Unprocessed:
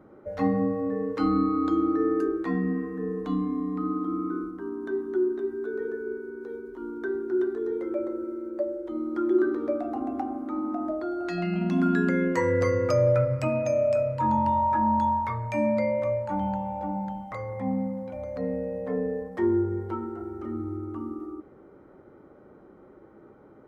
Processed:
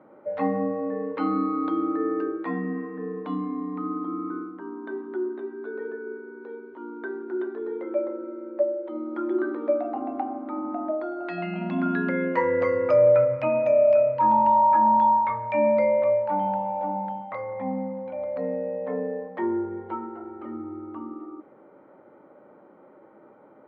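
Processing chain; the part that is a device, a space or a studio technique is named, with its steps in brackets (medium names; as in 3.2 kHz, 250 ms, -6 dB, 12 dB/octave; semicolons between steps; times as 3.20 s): kitchen radio (cabinet simulation 210–3400 Hz, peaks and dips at 390 Hz -5 dB, 580 Hz +6 dB, 910 Hz +6 dB, 2.3 kHz +3 dB)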